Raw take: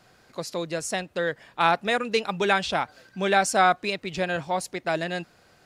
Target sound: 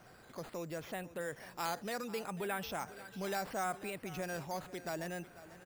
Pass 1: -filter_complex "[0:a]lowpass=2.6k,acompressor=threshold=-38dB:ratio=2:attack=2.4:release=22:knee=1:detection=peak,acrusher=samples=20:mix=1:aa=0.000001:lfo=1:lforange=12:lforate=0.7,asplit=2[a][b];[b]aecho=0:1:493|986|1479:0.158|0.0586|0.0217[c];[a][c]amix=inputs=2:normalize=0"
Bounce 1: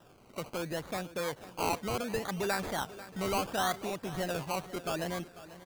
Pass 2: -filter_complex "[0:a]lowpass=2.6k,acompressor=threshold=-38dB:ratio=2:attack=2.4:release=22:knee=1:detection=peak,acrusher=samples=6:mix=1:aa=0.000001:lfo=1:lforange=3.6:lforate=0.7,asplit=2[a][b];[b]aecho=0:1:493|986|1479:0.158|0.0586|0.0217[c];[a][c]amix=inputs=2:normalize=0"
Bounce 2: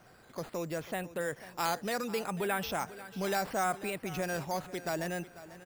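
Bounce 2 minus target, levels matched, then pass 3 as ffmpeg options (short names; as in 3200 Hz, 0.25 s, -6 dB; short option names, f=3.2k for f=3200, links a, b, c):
compressor: peak gain reduction -5.5 dB
-filter_complex "[0:a]lowpass=2.6k,acompressor=threshold=-49.5dB:ratio=2:attack=2.4:release=22:knee=1:detection=peak,acrusher=samples=6:mix=1:aa=0.000001:lfo=1:lforange=3.6:lforate=0.7,asplit=2[a][b];[b]aecho=0:1:493|986|1479:0.158|0.0586|0.0217[c];[a][c]amix=inputs=2:normalize=0"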